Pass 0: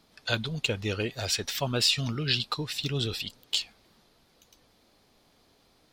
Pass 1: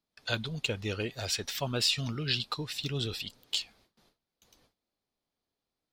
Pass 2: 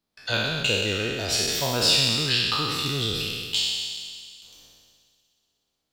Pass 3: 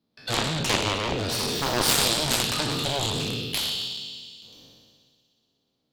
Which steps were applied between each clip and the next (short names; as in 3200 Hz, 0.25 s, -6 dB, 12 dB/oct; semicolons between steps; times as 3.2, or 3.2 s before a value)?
gate with hold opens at -51 dBFS; gain -3.5 dB
spectral trails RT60 1.78 s; on a send: thin delay 61 ms, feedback 84%, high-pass 3400 Hz, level -14 dB; on the sum: gain +3 dB
ten-band EQ 125 Hz +12 dB, 250 Hz +12 dB, 500 Hz +8 dB, 1000 Hz +3 dB, 4000 Hz +8 dB, 8000 Hz -6 dB; added harmonics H 4 -13 dB, 7 -9 dB, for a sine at -0.5 dBFS; gain -8 dB